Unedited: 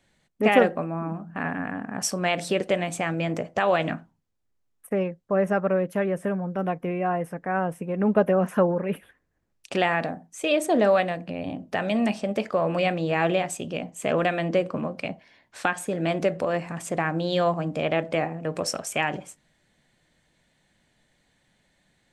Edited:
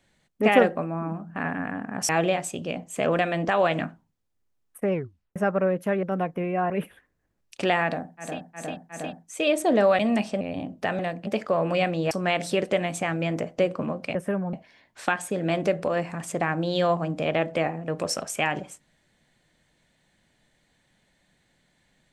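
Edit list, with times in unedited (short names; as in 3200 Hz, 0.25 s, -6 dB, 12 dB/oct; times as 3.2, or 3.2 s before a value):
2.09–3.57 swap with 13.15–14.54
5.02 tape stop 0.43 s
6.12–6.5 move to 15.1
7.17–8.82 cut
10.05–10.41 loop, 4 plays, crossfade 0.24 s
11.03–11.31 swap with 11.89–12.31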